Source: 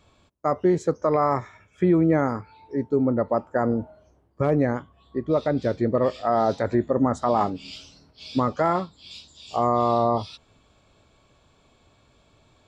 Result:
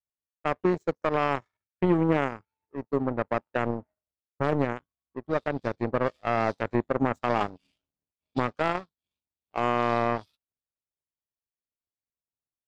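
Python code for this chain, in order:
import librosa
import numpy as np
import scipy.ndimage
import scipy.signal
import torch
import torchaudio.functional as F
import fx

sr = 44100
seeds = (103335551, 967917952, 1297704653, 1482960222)

y = fx.env_lowpass(x, sr, base_hz=1000.0, full_db=-20.0)
y = fx.power_curve(y, sr, exponent=2.0)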